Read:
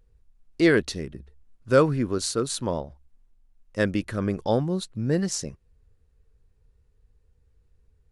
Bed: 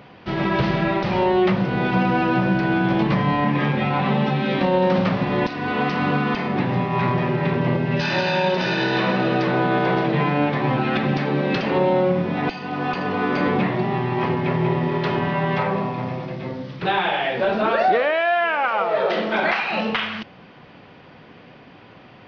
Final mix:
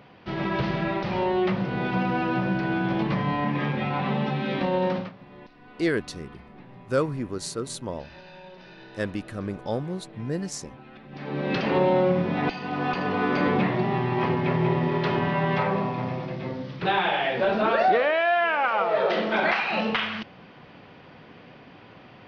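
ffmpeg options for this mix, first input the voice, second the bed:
-filter_complex "[0:a]adelay=5200,volume=0.531[s0];[1:a]volume=7.08,afade=t=out:st=4.87:d=0.25:silence=0.105925,afade=t=in:st=11.1:d=0.55:silence=0.0707946[s1];[s0][s1]amix=inputs=2:normalize=0"

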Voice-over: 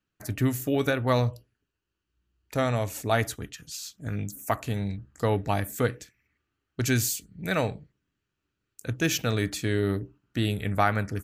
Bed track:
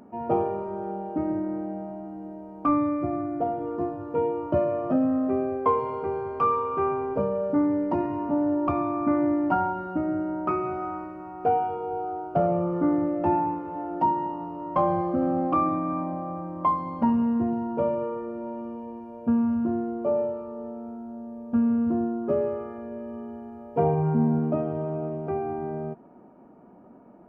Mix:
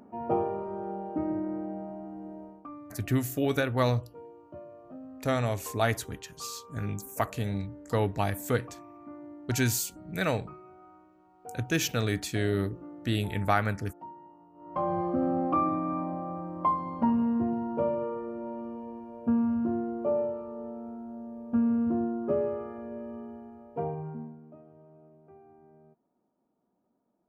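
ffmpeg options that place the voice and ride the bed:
-filter_complex "[0:a]adelay=2700,volume=0.794[s0];[1:a]volume=5.96,afade=t=out:st=2.44:d=0.23:silence=0.11885,afade=t=in:st=14.53:d=0.52:silence=0.112202,afade=t=out:st=23.01:d=1.35:silence=0.0749894[s1];[s0][s1]amix=inputs=2:normalize=0"

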